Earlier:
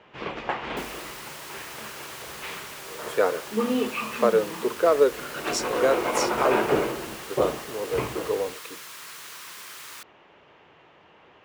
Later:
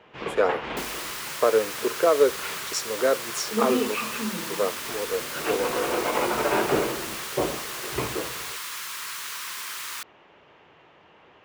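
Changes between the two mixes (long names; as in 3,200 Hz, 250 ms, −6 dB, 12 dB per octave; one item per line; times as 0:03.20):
speech: entry −2.80 s
second sound +7.0 dB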